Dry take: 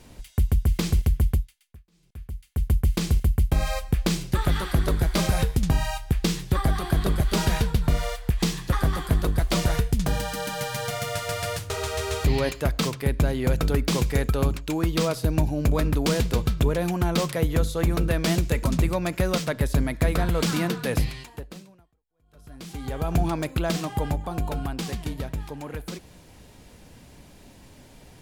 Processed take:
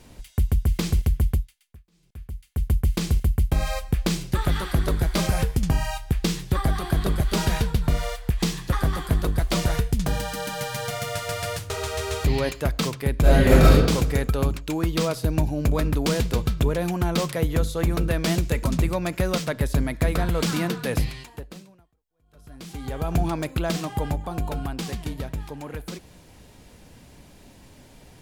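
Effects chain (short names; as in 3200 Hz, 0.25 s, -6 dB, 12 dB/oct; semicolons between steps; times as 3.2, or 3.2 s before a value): 5.26–5.91 notch 3800 Hz, Q 11; 13.21–13.71 reverb throw, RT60 1.1 s, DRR -10.5 dB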